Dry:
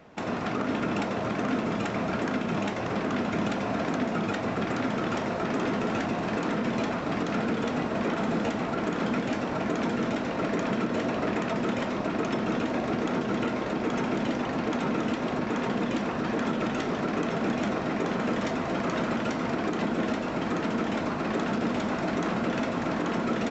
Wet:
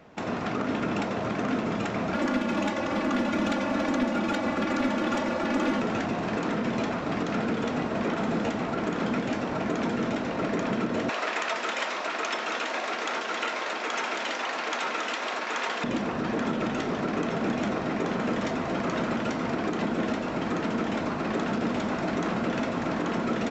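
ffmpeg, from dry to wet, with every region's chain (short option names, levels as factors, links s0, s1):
-filter_complex "[0:a]asettb=1/sr,asplit=3[s0][s1][s2];[s0]atrim=end=2.144[s3];[s1]atrim=start=2.14:end=5.82,asetpts=PTS-STARTPTS,afade=t=in:d=0.004:c=qsin,afade=t=out:st=3.676:d=0.004:c=qsin,lowshelf=f=73:g=-8,aecho=1:1:3.5:0.89,atrim=end_sample=162288,aeval=exprs='clip(val(0),-1,0.0794)':c=same[s4];[s2]atrim=start=5.816[s5];[s3][s4]acrossfade=d=0.004:c1=hsin:c2=qsin[s6];[s6][s5]acrossfade=d=0.004:c1=qsin:c2=hsin,asettb=1/sr,asplit=3[s7][s8][s9];[s7]atrim=end=11.094[s10];[s8]atrim=start=11.09:end=15.84,asetpts=PTS-STARTPTS,afade=t=in:d=0.004:c=qsin,afade=t=out:st=4.746:d=0.004:c=qsin,highpass=420,tiltshelf=f=670:g=-8[s11];[s9]atrim=start=15.836[s12];[s10][s11]acrossfade=d=0.004:c1=hsin:c2=qsin[s13];[s13][s12]acrossfade=d=0.004:c1=qsin:c2=hsin"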